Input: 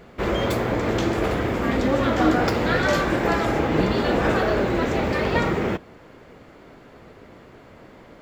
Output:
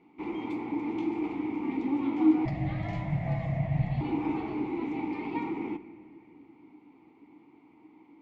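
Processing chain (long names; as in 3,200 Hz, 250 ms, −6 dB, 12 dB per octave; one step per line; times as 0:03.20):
formant filter u
0:02.45–0:04.01: frequency shifter −170 Hz
on a send: convolution reverb RT60 2.8 s, pre-delay 6 ms, DRR 12 dB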